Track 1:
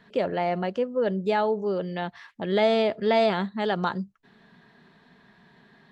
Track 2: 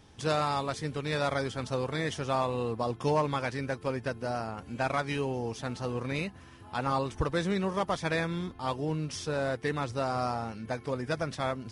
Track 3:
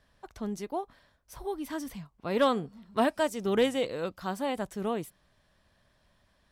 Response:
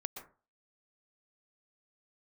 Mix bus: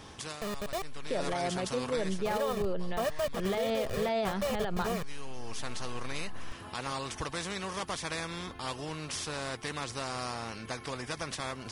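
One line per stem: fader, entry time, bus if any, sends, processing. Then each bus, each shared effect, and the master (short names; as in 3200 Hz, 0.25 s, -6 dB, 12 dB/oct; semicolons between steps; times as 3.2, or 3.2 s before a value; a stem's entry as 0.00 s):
-5.5 dB, 0.95 s, no bus, no send, dry
-4.5 dB, 0.00 s, bus A, no send, small resonant body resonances 1100 Hz, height 10 dB; spectral compressor 2:1; auto duck -12 dB, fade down 0.30 s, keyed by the third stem
0.0 dB, 0.00 s, muted 1.34–1.97, bus A, no send, level-crossing sampler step -27.5 dBFS; comb 1.7 ms, depth 83%
bus A: 0.0 dB, compressor 1.5:1, threshold -34 dBFS, peak gain reduction 6.5 dB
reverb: off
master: limiter -22.5 dBFS, peak gain reduction 10 dB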